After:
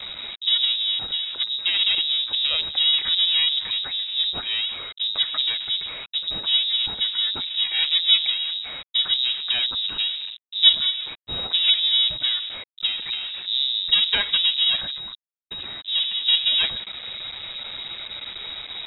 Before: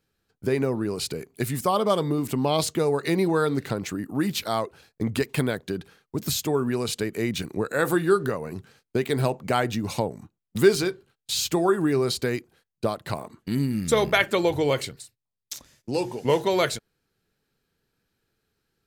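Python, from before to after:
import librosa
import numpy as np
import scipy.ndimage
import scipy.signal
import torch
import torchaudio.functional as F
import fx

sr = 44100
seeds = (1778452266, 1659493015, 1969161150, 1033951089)

y = x + 0.5 * 10.0 ** (-23.5 / 20.0) * np.sign(x)
y = fx.spec_gate(y, sr, threshold_db=-20, keep='strong')
y = fx.dynamic_eq(y, sr, hz=420.0, q=2.3, threshold_db=-34.0, ratio=4.0, max_db=5)
y = np.maximum(y, 0.0)
y = fx.freq_invert(y, sr, carrier_hz=3800)
y = y * librosa.db_to_amplitude(-1.0)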